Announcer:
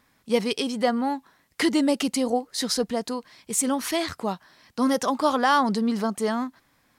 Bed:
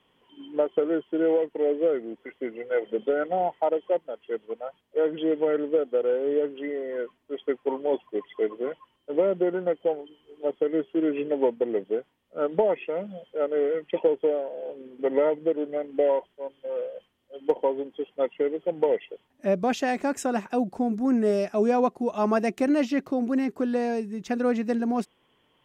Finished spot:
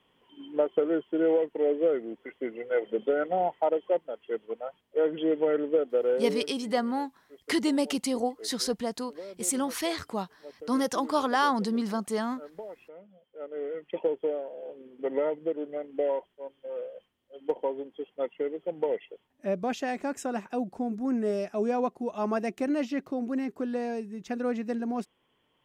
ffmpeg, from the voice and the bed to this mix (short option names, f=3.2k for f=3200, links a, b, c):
-filter_complex "[0:a]adelay=5900,volume=-4.5dB[a];[1:a]volume=12dB,afade=t=out:st=6.17:d=0.33:silence=0.133352,afade=t=in:st=13.26:d=0.78:silence=0.211349[b];[a][b]amix=inputs=2:normalize=0"